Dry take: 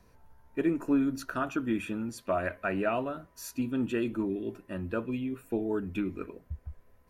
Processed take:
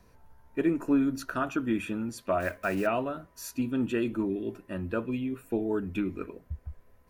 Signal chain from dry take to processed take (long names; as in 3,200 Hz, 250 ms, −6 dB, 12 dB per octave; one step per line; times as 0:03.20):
0:02.40–0:02.88: one scale factor per block 5 bits
level +1.5 dB